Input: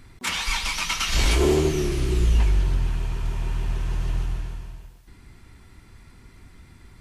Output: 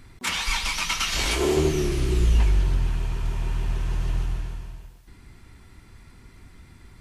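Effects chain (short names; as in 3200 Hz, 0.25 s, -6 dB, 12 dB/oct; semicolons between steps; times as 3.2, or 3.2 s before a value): 1.09–1.57 low shelf 220 Hz -9.5 dB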